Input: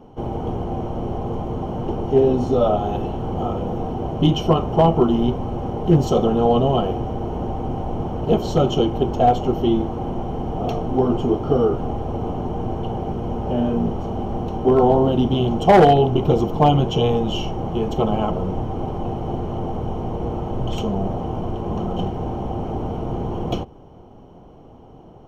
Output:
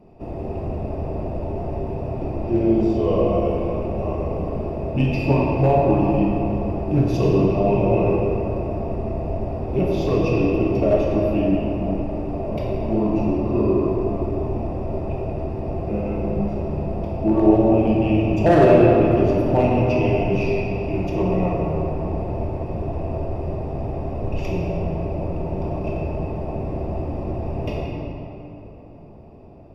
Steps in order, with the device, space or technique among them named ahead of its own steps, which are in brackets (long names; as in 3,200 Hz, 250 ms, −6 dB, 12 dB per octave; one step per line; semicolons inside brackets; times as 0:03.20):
slowed and reverbed (speed change −15%; convolution reverb RT60 3.3 s, pre-delay 21 ms, DRR −3.5 dB)
level −5.5 dB